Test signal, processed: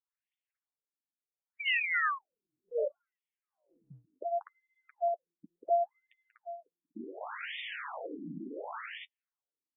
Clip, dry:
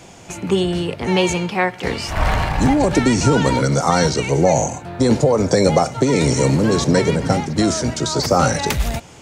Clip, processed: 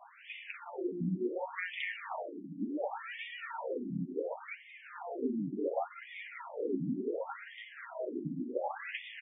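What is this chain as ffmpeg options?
-filter_complex "[0:a]aeval=exprs='0.841*(cos(1*acos(clip(val(0)/0.841,-1,1)))-cos(1*PI/2))+0.0266*(cos(3*acos(clip(val(0)/0.841,-1,1)))-cos(3*PI/2))':c=same,flanger=delay=5.8:depth=5.5:regen=-21:speed=0.62:shape=triangular,acompressor=threshold=0.0316:ratio=6,asplit=2[s0][s1];[s1]aecho=0:1:186.6|244.9:0.501|0.891[s2];[s0][s2]amix=inputs=2:normalize=0,afftfilt=real='re*between(b*sr/1024,230*pow(2600/230,0.5+0.5*sin(2*PI*0.69*pts/sr))/1.41,230*pow(2600/230,0.5+0.5*sin(2*PI*0.69*pts/sr))*1.41)':imag='im*between(b*sr/1024,230*pow(2600/230,0.5+0.5*sin(2*PI*0.69*pts/sr))/1.41,230*pow(2600/230,0.5+0.5*sin(2*PI*0.69*pts/sr))*1.41)':win_size=1024:overlap=0.75"

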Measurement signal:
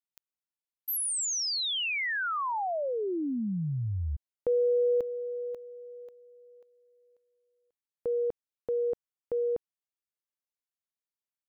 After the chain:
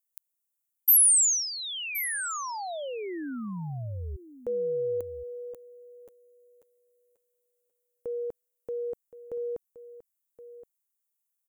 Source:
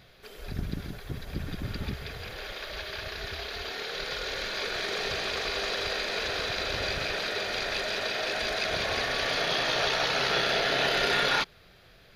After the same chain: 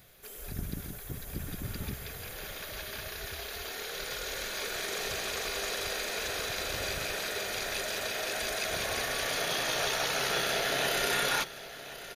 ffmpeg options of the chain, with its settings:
-af "aexciter=amount=6.3:drive=4.9:freq=6500,aecho=1:1:1071:0.188,volume=0.631"

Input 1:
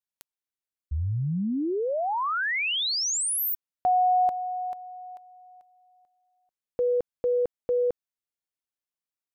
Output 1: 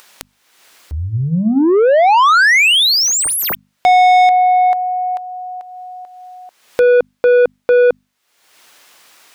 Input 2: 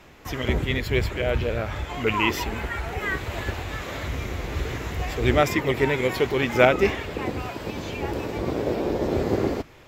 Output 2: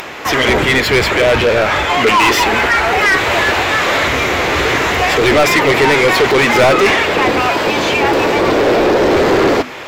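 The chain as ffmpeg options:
-filter_complex "[0:a]asplit=2[s0][s1];[s1]highpass=f=720:p=1,volume=44.7,asoftclip=type=tanh:threshold=0.891[s2];[s0][s2]amix=inputs=2:normalize=0,lowpass=f=3700:p=1,volume=0.501,acompressor=mode=upward:threshold=0.0708:ratio=2.5:attack=3.7:release=390:knee=2.83:detection=peak,bandreject=f=50:t=h:w=6,bandreject=f=100:t=h:w=6,bandreject=f=150:t=h:w=6,bandreject=f=200:t=h:w=6,bandreject=f=250:t=h:w=6,volume=0.891"

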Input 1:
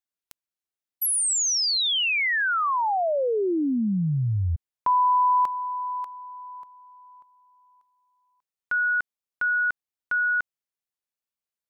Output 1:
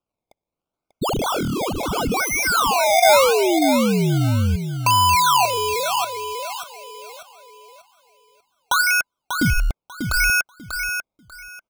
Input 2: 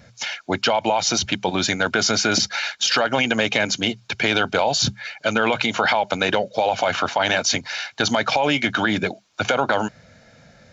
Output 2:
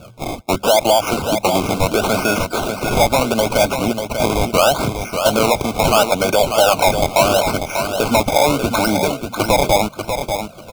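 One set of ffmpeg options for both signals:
-filter_complex "[0:a]lowshelf=f=330:g=4.5,asplit=2[s0][s1];[s1]acompressor=threshold=0.0282:ratio=6:attack=67:release=887:detection=rms,volume=0.944[s2];[s0][s2]amix=inputs=2:normalize=0,equalizer=f=630:t=o:w=0.67:g=11,equalizer=f=1600:t=o:w=0.67:g=4,equalizer=f=4000:t=o:w=0.67:g=-5,acrusher=samples=21:mix=1:aa=0.000001:lfo=1:lforange=21:lforate=0.75,asoftclip=type=tanh:threshold=0.596,asuperstop=centerf=1800:order=20:qfactor=3.3,asplit=2[s3][s4];[s4]aecho=0:1:592|1184|1776:0.447|0.0893|0.0179[s5];[s3][s5]amix=inputs=2:normalize=0,volume=0.891"

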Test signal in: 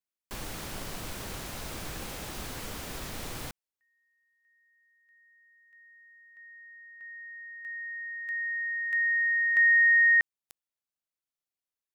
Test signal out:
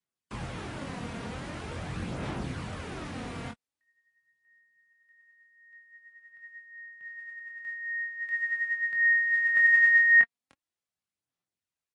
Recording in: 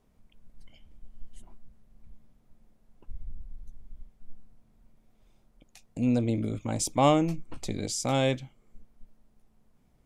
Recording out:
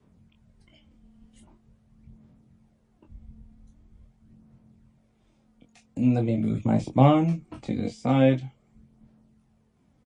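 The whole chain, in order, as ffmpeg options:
-filter_complex "[0:a]adynamicequalizer=threshold=0.00398:dfrequency=720:dqfactor=5.5:tfrequency=720:tqfactor=5.5:attack=5:release=100:ratio=0.375:range=2:mode=boostabove:tftype=bell,highpass=100,bass=f=250:g=8,treble=f=4000:g=-3,acrossover=split=130|3000[s0][s1][s2];[s2]acompressor=threshold=0.00282:ratio=12:attack=0.52:release=70:knee=6:detection=rms[s3];[s0][s1][s3]amix=inputs=3:normalize=0,aphaser=in_gain=1:out_gain=1:delay=4.3:decay=0.44:speed=0.44:type=sinusoidal,asplit=2[s4][s5];[s5]adelay=23,volume=0.562[s6];[s4][s6]amix=inputs=2:normalize=0" -ar 24000 -c:a libmp3lame -b:a 40k

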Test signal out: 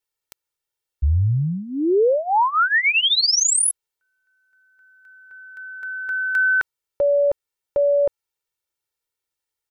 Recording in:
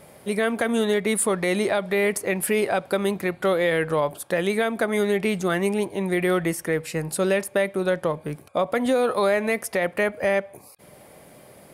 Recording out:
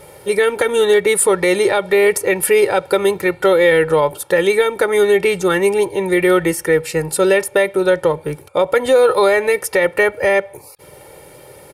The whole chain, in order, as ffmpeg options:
-af "aecho=1:1:2.2:0.8,volume=2"

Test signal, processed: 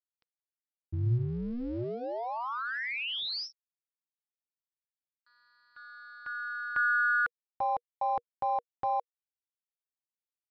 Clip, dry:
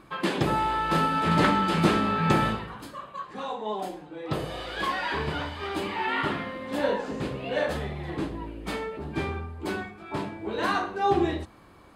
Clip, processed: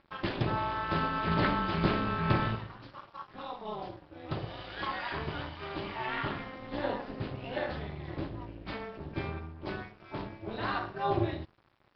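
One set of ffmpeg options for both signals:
-af "tremolo=f=240:d=0.788,equalizer=f=110:w=3.4:g=10,aresample=11025,aeval=exprs='sgn(val(0))*max(abs(val(0))-0.00237,0)':c=same,aresample=44100,bandreject=f=480:w=12,volume=0.708"

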